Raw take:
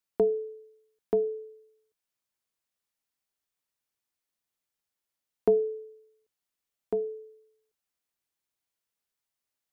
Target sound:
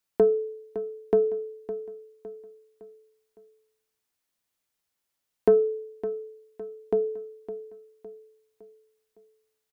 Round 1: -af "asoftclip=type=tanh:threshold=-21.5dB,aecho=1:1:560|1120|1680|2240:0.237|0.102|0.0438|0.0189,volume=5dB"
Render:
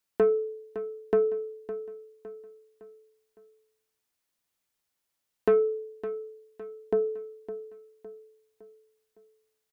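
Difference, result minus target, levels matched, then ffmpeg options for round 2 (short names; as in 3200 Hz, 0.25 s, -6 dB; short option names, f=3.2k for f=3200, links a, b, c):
soft clip: distortion +12 dB
-af "asoftclip=type=tanh:threshold=-13.5dB,aecho=1:1:560|1120|1680|2240:0.237|0.102|0.0438|0.0189,volume=5dB"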